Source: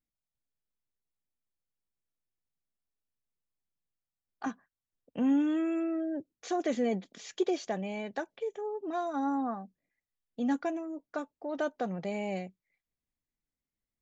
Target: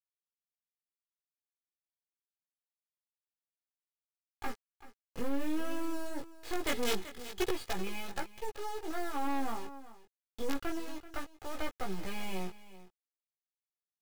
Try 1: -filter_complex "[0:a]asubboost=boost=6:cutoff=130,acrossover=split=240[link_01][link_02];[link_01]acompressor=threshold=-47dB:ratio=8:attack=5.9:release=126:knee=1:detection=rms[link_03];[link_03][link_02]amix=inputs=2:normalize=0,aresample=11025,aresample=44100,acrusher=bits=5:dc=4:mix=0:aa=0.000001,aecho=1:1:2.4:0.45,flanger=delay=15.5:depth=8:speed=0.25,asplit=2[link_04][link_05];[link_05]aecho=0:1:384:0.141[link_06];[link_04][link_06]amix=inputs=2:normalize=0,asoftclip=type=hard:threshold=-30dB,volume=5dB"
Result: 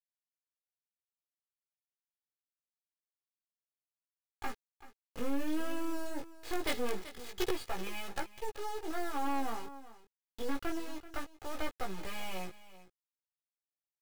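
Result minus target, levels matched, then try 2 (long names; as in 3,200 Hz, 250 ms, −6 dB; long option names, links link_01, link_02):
downward compressor: peak gain reduction +9 dB
-filter_complex "[0:a]asubboost=boost=6:cutoff=130,acrossover=split=240[link_01][link_02];[link_01]acompressor=threshold=-36.5dB:ratio=8:attack=5.9:release=126:knee=1:detection=rms[link_03];[link_03][link_02]amix=inputs=2:normalize=0,aresample=11025,aresample=44100,acrusher=bits=5:dc=4:mix=0:aa=0.000001,aecho=1:1:2.4:0.45,flanger=delay=15.5:depth=8:speed=0.25,asplit=2[link_04][link_05];[link_05]aecho=0:1:384:0.141[link_06];[link_04][link_06]amix=inputs=2:normalize=0,asoftclip=type=hard:threshold=-30dB,volume=5dB"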